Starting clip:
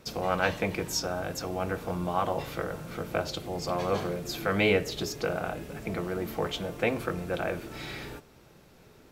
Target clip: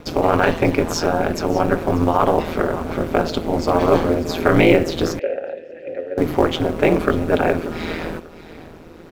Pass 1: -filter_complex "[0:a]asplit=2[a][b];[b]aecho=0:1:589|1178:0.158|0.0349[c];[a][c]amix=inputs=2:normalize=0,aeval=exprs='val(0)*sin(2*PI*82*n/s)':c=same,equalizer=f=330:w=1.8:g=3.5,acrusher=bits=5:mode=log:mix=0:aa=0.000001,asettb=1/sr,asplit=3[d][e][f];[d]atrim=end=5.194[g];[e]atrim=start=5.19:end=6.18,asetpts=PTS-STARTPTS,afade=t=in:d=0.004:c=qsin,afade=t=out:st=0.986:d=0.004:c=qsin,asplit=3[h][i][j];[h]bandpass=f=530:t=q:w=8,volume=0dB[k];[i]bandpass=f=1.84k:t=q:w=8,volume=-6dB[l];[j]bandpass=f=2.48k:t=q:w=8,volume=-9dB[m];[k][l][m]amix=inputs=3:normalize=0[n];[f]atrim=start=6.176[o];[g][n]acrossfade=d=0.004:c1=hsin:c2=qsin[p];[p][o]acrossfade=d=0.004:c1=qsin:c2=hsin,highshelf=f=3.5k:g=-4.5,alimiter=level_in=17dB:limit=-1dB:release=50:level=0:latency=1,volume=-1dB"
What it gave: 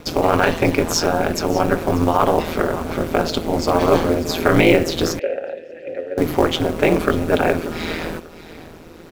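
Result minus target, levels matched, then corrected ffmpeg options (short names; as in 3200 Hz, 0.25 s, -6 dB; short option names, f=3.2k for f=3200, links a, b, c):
8000 Hz band +5.5 dB
-filter_complex "[0:a]asplit=2[a][b];[b]aecho=0:1:589|1178:0.158|0.0349[c];[a][c]amix=inputs=2:normalize=0,aeval=exprs='val(0)*sin(2*PI*82*n/s)':c=same,equalizer=f=330:w=1.8:g=3.5,acrusher=bits=5:mode=log:mix=0:aa=0.000001,asettb=1/sr,asplit=3[d][e][f];[d]atrim=end=5.194[g];[e]atrim=start=5.19:end=6.18,asetpts=PTS-STARTPTS,afade=t=in:d=0.004:c=qsin,afade=t=out:st=0.986:d=0.004:c=qsin,asplit=3[h][i][j];[h]bandpass=f=530:t=q:w=8,volume=0dB[k];[i]bandpass=f=1.84k:t=q:w=8,volume=-6dB[l];[j]bandpass=f=2.48k:t=q:w=8,volume=-9dB[m];[k][l][m]amix=inputs=3:normalize=0[n];[f]atrim=start=6.176[o];[g][n]acrossfade=d=0.004:c1=hsin:c2=qsin[p];[p][o]acrossfade=d=0.004:c1=qsin:c2=hsin,highshelf=f=3.5k:g=-12,alimiter=level_in=17dB:limit=-1dB:release=50:level=0:latency=1,volume=-1dB"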